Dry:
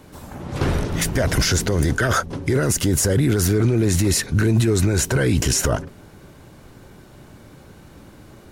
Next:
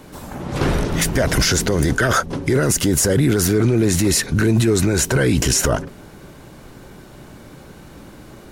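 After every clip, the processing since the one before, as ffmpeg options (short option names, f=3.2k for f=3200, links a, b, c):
-filter_complex "[0:a]equalizer=f=92:t=o:w=0.58:g=-6.5,asplit=2[a][b];[b]alimiter=limit=-16.5dB:level=0:latency=1:release=100,volume=-2.5dB[c];[a][c]amix=inputs=2:normalize=0"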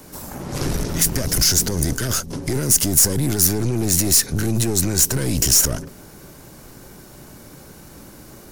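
-filter_complex "[0:a]aeval=exprs='(tanh(5.62*val(0)+0.55)-tanh(0.55))/5.62':c=same,acrossover=split=370|3000[a][b][c];[b]acompressor=threshold=-31dB:ratio=6[d];[a][d][c]amix=inputs=3:normalize=0,aexciter=amount=3.4:drive=2.6:freq=4.8k"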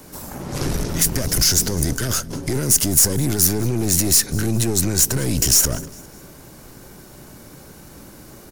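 -af "aecho=1:1:202|404|606:0.0794|0.0334|0.014"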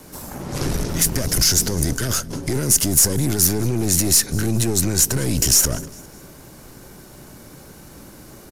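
-af "aresample=32000,aresample=44100"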